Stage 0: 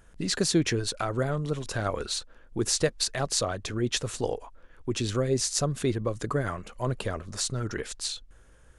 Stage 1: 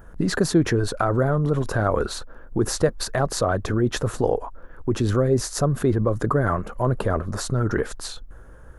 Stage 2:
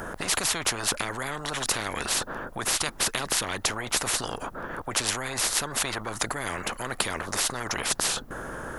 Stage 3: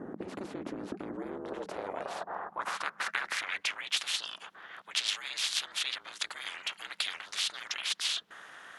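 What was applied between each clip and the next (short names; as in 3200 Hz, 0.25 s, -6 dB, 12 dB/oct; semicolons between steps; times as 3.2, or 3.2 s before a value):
band shelf 4500 Hz -14.5 dB 2.5 oct; in parallel at -2.5 dB: negative-ratio compressor -33 dBFS, ratio -1; on the sum: gain +5 dB
spectral compressor 10:1
ring modulator 190 Hz; band-pass sweep 300 Hz -> 3300 Hz, 1.12–4; gain +5.5 dB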